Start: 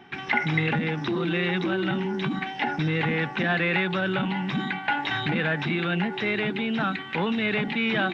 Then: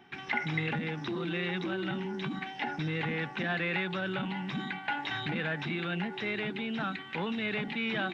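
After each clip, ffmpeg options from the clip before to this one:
-af "highshelf=f=5300:g=5.5,volume=0.398"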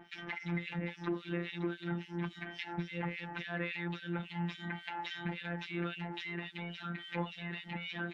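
-filter_complex "[0:a]acompressor=threshold=0.0158:ratio=6,afftfilt=real='hypot(re,im)*cos(PI*b)':imag='0':win_size=1024:overlap=0.75,acrossover=split=2100[s0][s1];[s0]aeval=exprs='val(0)*(1-1/2+1/2*cos(2*PI*3.6*n/s))':c=same[s2];[s1]aeval=exprs='val(0)*(1-1/2-1/2*cos(2*PI*3.6*n/s))':c=same[s3];[s2][s3]amix=inputs=2:normalize=0,volume=2.24"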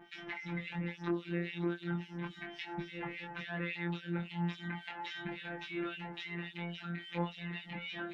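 -af "flanger=delay=20:depth=3.7:speed=0.36,volume=1.26"

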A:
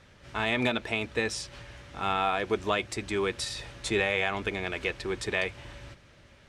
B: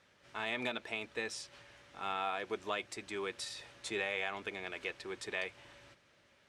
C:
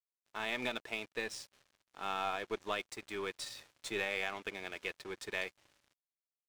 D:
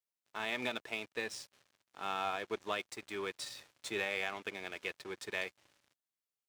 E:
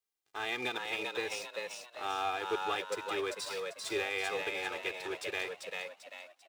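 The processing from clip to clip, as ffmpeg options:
-af "highpass=f=350:p=1,volume=0.376"
-af "aeval=exprs='sgn(val(0))*max(abs(val(0))-0.00224,0)':c=same,aeval=exprs='0.0841*(cos(1*acos(clip(val(0)/0.0841,-1,1)))-cos(1*PI/2))+0.00335*(cos(6*acos(clip(val(0)/0.0841,-1,1)))-cos(6*PI/2))':c=same,volume=1.12"
-af "highpass=72"
-filter_complex "[0:a]aecho=1:1:2.5:0.78,asplit=2[s0][s1];[s1]asplit=5[s2][s3][s4][s5][s6];[s2]adelay=393,afreqshift=80,volume=0.668[s7];[s3]adelay=786,afreqshift=160,volume=0.266[s8];[s4]adelay=1179,afreqshift=240,volume=0.107[s9];[s5]adelay=1572,afreqshift=320,volume=0.0427[s10];[s6]adelay=1965,afreqshift=400,volume=0.0172[s11];[s7][s8][s9][s10][s11]amix=inputs=5:normalize=0[s12];[s0][s12]amix=inputs=2:normalize=0"

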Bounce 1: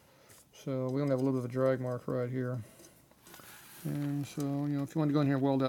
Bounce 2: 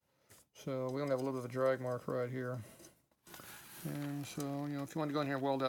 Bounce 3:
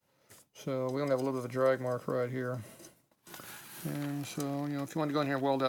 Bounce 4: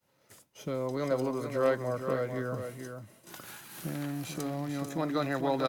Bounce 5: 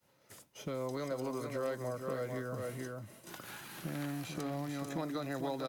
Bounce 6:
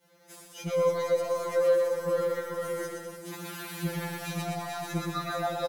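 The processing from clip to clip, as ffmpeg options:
-filter_complex "[0:a]agate=range=0.0224:threshold=0.00282:ratio=3:detection=peak,acrossover=split=480|890[s0][s1][s2];[s0]acompressor=threshold=0.01:ratio=6[s3];[s3][s1][s2]amix=inputs=3:normalize=0"
-af "equalizer=f=61:t=o:w=0.6:g=-13.5,volume=1.78"
-af "aeval=exprs='0.15*(cos(1*acos(clip(val(0)/0.15,-1,1)))-cos(1*PI/2))+0.0188*(cos(3*acos(clip(val(0)/0.15,-1,1)))-cos(3*PI/2))+0.0075*(cos(5*acos(clip(val(0)/0.15,-1,1)))-cos(5*PI/2))':c=same,aecho=1:1:442:0.422,volume=1.26"
-filter_complex "[0:a]tremolo=f=2.2:d=0.36,acrossover=split=710|4600[s0][s1][s2];[s0]acompressor=threshold=0.01:ratio=4[s3];[s1]acompressor=threshold=0.00398:ratio=4[s4];[s2]acompressor=threshold=0.00158:ratio=4[s5];[s3][s4][s5]amix=inputs=3:normalize=0,volume=1.41"
-filter_complex "[0:a]asplit=2[s0][s1];[s1]aecho=0:1:120|204|262.8|304|332.8:0.631|0.398|0.251|0.158|0.1[s2];[s0][s2]amix=inputs=2:normalize=0,afftfilt=real='re*2.83*eq(mod(b,8),0)':imag='im*2.83*eq(mod(b,8),0)':win_size=2048:overlap=0.75,volume=2.66"

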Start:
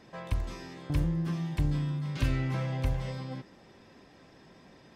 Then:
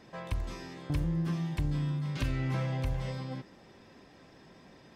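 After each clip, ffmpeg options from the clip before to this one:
-af "alimiter=limit=0.0794:level=0:latency=1:release=187"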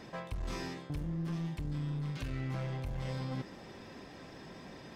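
-af "areverse,acompressor=threshold=0.01:ratio=6,areverse,aeval=exprs='clip(val(0),-1,0.00794)':c=same,volume=2"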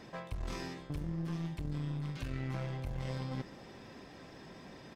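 -filter_complex "[0:a]asplit=2[s0][s1];[s1]acrusher=bits=4:mix=0:aa=0.5,volume=0.316[s2];[s0][s2]amix=inputs=2:normalize=0,aecho=1:1:480:0.0708,volume=0.794"

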